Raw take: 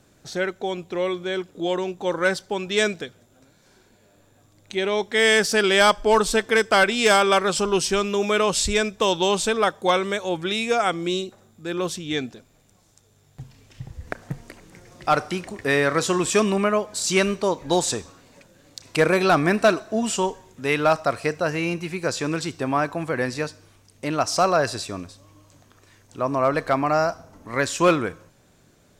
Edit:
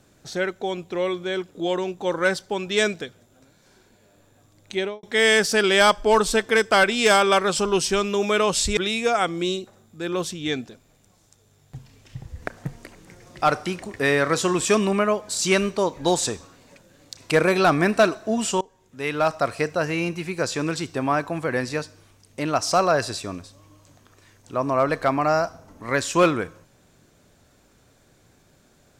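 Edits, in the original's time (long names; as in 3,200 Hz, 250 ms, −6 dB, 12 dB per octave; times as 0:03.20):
0:04.77–0:05.03: fade out and dull
0:08.77–0:10.42: remove
0:20.26–0:21.12: fade in, from −22.5 dB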